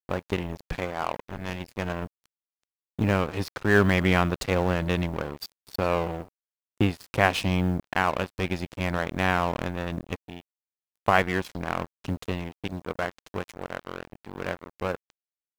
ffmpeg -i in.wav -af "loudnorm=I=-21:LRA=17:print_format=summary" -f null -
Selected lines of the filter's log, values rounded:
Input Integrated:    -28.4 LUFS
Input True Peak:      -5.1 dBTP
Input LRA:             9.7 LU
Input Threshold:     -38.8 LUFS